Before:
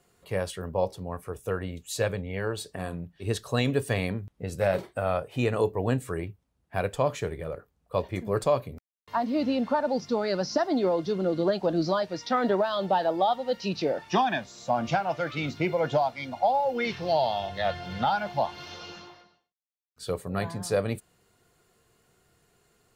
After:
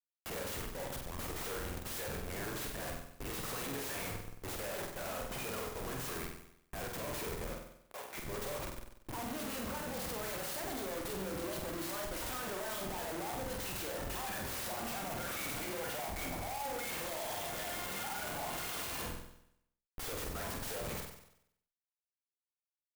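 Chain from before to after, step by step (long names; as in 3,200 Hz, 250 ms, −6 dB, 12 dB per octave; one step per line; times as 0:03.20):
first difference
brickwall limiter −34 dBFS, peak gain reduction 10.5 dB
comparator with hysteresis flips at −54 dBFS
0:07.53–0:08.17: band-pass filter 580–6,400 Hz
flutter between parallel walls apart 8.1 metres, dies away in 0.75 s
converter with an unsteady clock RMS 0.059 ms
level +7 dB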